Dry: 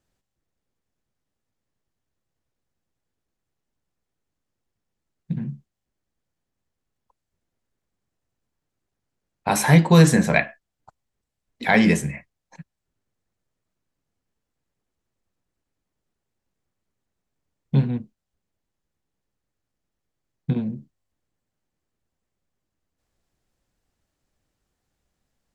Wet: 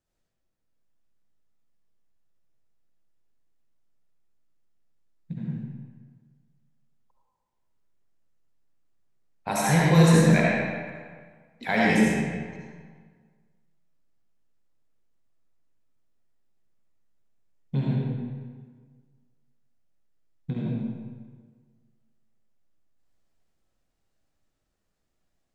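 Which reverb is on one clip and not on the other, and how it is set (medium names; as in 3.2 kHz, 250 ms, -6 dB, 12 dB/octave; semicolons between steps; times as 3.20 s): algorithmic reverb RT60 1.6 s, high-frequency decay 0.75×, pre-delay 30 ms, DRR -5 dB; trim -8.5 dB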